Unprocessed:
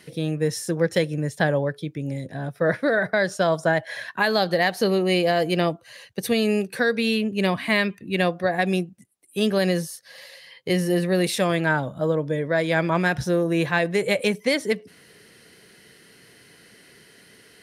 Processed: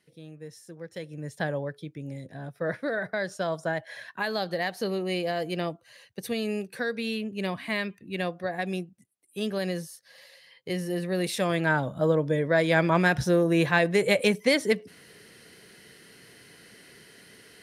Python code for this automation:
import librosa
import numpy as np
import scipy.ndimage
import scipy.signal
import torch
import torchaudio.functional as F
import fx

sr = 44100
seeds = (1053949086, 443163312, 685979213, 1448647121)

y = fx.gain(x, sr, db=fx.line((0.87, -19.5), (1.33, -8.5), (10.93, -8.5), (11.99, -0.5)))